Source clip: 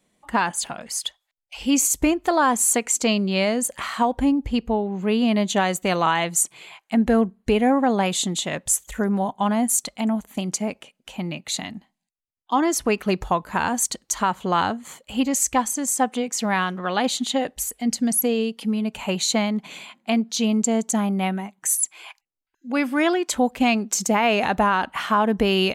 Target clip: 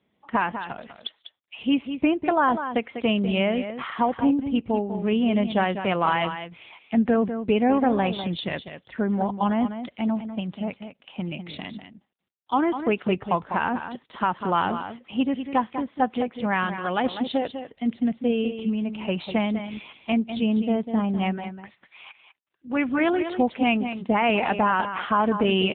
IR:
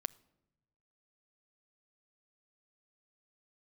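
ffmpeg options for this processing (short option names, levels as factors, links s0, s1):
-filter_complex "[0:a]asplit=3[s0][s1][s2];[s0]afade=t=out:st=10.19:d=0.02[s3];[s1]equalizer=f=350:w=1.9:g=-7,afade=t=in:st=10.19:d=0.02,afade=t=out:st=11.15:d=0.02[s4];[s2]afade=t=in:st=11.15:d=0.02[s5];[s3][s4][s5]amix=inputs=3:normalize=0,asplit=2[s6][s7];[s7]aecho=0:1:198:0.335[s8];[s6][s8]amix=inputs=2:normalize=0,volume=0.841" -ar 8000 -c:a libopencore_amrnb -b:a 7950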